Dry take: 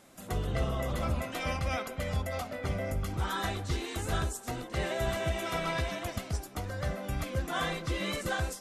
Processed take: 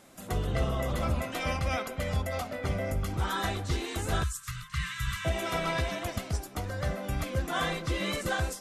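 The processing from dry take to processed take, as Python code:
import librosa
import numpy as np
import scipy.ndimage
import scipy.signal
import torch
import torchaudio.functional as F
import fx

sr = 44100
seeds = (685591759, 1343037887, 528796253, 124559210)

y = fx.brickwall_bandstop(x, sr, low_hz=180.0, high_hz=1000.0, at=(4.23, 5.25))
y = F.gain(torch.from_numpy(y), 2.0).numpy()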